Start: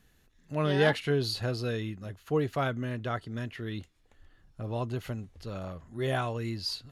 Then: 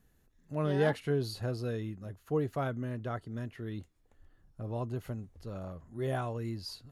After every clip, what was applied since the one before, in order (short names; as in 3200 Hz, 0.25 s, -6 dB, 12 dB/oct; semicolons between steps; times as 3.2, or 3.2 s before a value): bell 3200 Hz -9 dB 2.2 oct; gain -2.5 dB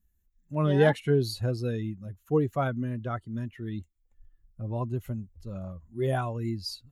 per-bin expansion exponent 1.5; gain +8 dB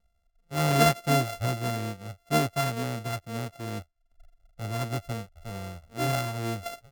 sample sorter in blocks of 64 samples